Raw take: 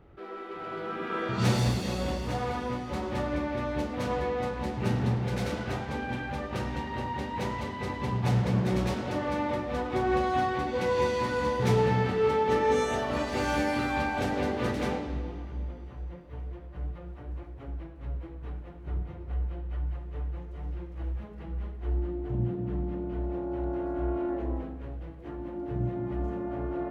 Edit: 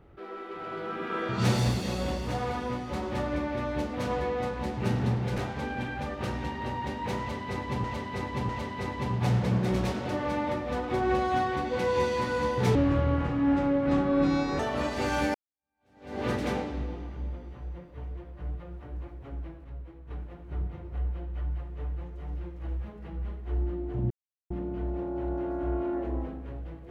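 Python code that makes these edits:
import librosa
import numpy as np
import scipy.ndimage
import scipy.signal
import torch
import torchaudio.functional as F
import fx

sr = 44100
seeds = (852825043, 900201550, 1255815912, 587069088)

y = fx.edit(x, sr, fx.cut(start_s=5.38, length_s=0.32),
    fx.repeat(start_s=7.51, length_s=0.65, count=3),
    fx.speed_span(start_s=11.77, length_s=1.18, speed=0.64),
    fx.fade_in_span(start_s=13.7, length_s=0.86, curve='exp'),
    fx.clip_gain(start_s=18.0, length_s=0.46, db=-6.0),
    fx.silence(start_s=22.46, length_s=0.4), tone=tone)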